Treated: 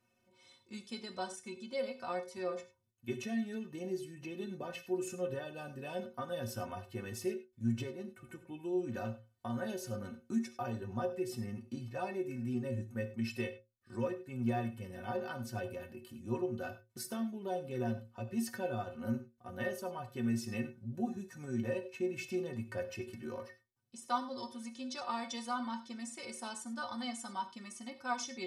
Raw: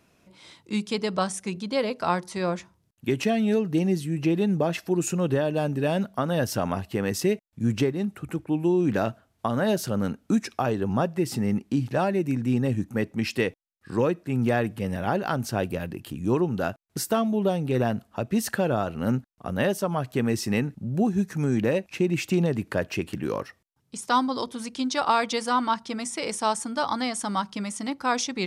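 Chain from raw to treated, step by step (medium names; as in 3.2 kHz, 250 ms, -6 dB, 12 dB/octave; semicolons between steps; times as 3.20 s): inharmonic resonator 110 Hz, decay 0.32 s, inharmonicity 0.03; gated-style reverb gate 120 ms flat, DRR 10 dB; trim -3.5 dB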